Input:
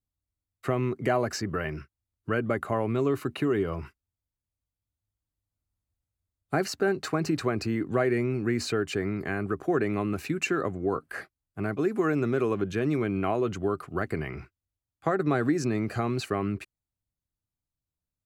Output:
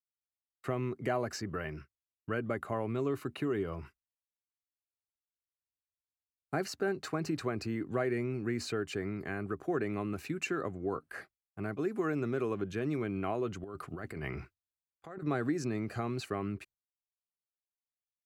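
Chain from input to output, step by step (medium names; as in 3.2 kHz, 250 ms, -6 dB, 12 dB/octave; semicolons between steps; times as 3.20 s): gate with hold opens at -43 dBFS; 13.64–15.26 s: compressor with a negative ratio -34 dBFS, ratio -1; trim -7 dB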